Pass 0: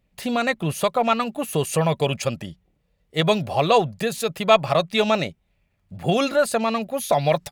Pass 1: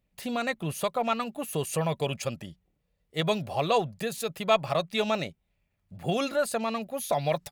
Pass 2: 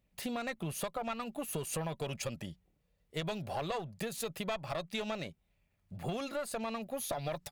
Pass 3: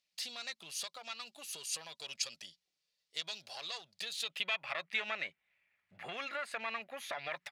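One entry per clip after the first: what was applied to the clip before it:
high-shelf EQ 10,000 Hz +5 dB; level −7.5 dB
one-sided soft clipper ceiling −25 dBFS; downward compressor, threshold −34 dBFS, peak gain reduction 12 dB
band-pass filter sweep 4,800 Hz → 2,000 Hz, 0:03.86–0:04.82; level +10.5 dB

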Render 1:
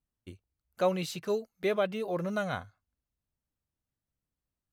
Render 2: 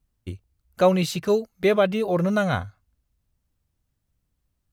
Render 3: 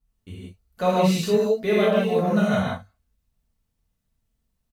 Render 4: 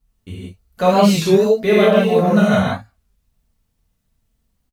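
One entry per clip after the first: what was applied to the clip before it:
low-shelf EQ 130 Hz +10.5 dB; level +8.5 dB
comb filter 4.5 ms, depth 36%; reverb whose tail is shaped and stops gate 210 ms flat, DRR −8 dB; level −8.5 dB
wow of a warped record 33 1/3 rpm, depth 160 cents; level +7 dB

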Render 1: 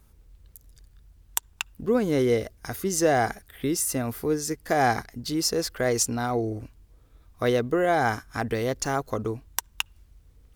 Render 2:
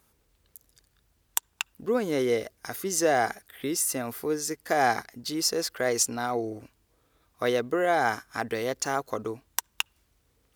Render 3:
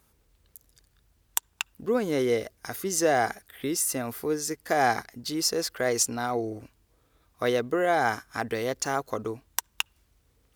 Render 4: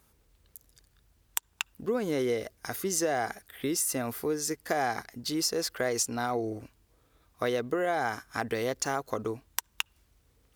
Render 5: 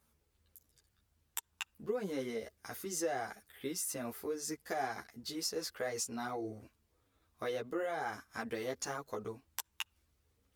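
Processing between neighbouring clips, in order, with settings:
high-pass filter 390 Hz 6 dB per octave
low-shelf EQ 120 Hz +5 dB
downward compressor, threshold −25 dBFS, peak gain reduction 7 dB
string-ensemble chorus; level −5.5 dB

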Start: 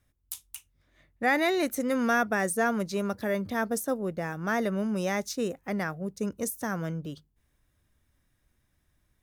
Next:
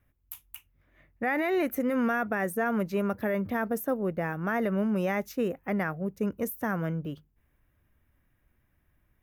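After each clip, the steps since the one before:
brickwall limiter −21 dBFS, peak gain reduction 6.5 dB
flat-topped bell 5,900 Hz −14 dB
level +2 dB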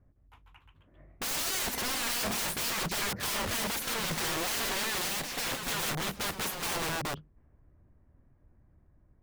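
low-pass that shuts in the quiet parts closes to 760 Hz, open at −25 dBFS
wrap-around overflow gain 35 dB
delay with pitch and tempo change per echo 161 ms, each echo +1 semitone, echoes 3, each echo −6 dB
level +6.5 dB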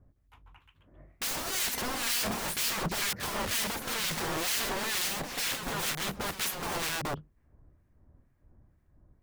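two-band tremolo in antiphase 2.1 Hz, depth 70%, crossover 1,500 Hz
level +3.5 dB

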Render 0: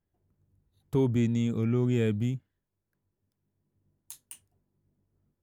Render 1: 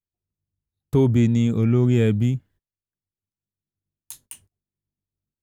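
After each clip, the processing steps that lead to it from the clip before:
noise gate −59 dBFS, range −24 dB
low-shelf EQ 130 Hz +5 dB
level +6.5 dB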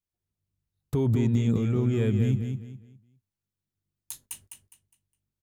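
brickwall limiter −17.5 dBFS, peak gain reduction 9 dB
on a send: repeating echo 205 ms, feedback 29%, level −6.5 dB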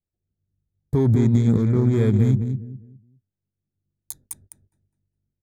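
adaptive Wiener filter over 41 samples
Butterworth band-reject 2,800 Hz, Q 2.7
level +6.5 dB

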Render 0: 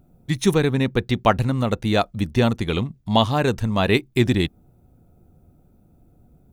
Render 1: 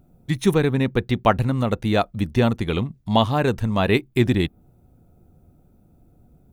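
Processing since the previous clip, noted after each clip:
dynamic equaliser 6,000 Hz, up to −6 dB, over −43 dBFS, Q 0.8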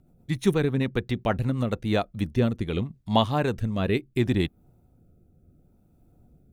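rotating-speaker cabinet horn 8 Hz, later 0.7 Hz, at 0:01.49
level −3 dB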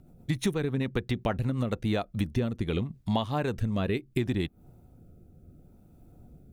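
downward compressor 6 to 1, threshold −30 dBFS, peak gain reduction 14 dB
level +5 dB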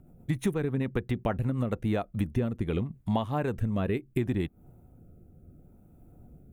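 parametric band 4,600 Hz −12 dB 1.2 octaves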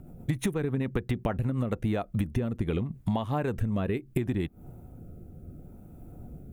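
downward compressor, threshold −33 dBFS, peak gain reduction 10.5 dB
level +8 dB

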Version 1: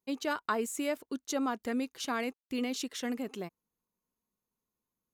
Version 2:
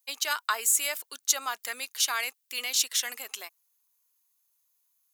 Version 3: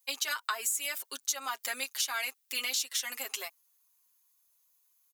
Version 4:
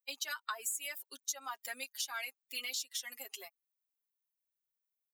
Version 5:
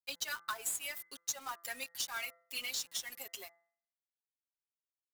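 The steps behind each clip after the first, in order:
high-pass filter 800 Hz 12 dB per octave; spectral tilt +4.5 dB per octave; level +3.5 dB
comb filter 7.4 ms, depth 83%; downward compressor 6 to 1, threshold −29 dBFS, peak gain reduction 12.5 dB
spectral dynamics exaggerated over time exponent 1.5; level −4.5 dB
log-companded quantiser 4 bits; hum removal 169.9 Hz, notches 12

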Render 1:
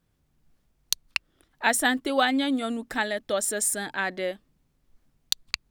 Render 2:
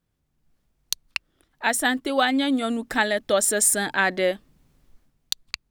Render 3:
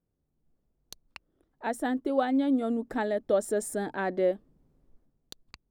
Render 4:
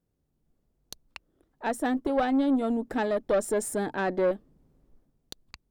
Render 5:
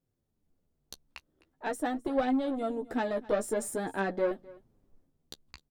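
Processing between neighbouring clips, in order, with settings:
automatic gain control gain up to 16 dB; level −4.5 dB
drawn EQ curve 130 Hz 0 dB, 440 Hz +5 dB, 2,600 Hz −14 dB; level −5.5 dB
tube saturation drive 22 dB, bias 0.35; level +4 dB
flanger 0.45 Hz, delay 7.4 ms, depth 7.3 ms, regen +14%; single-tap delay 258 ms −21.5 dB

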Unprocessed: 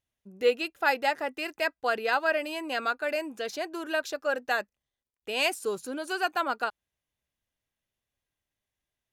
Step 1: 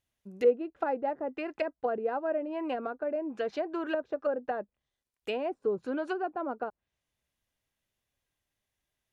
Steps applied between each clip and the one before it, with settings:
treble cut that deepens with the level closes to 540 Hz, closed at −27 dBFS
level +2.5 dB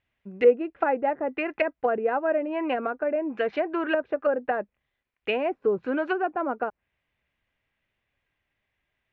low-pass with resonance 2,300 Hz, resonance Q 2.1
level +5.5 dB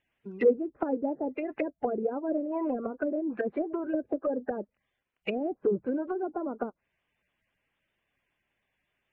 spectral magnitudes quantised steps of 30 dB
treble cut that deepens with the level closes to 450 Hz, closed at −24 dBFS

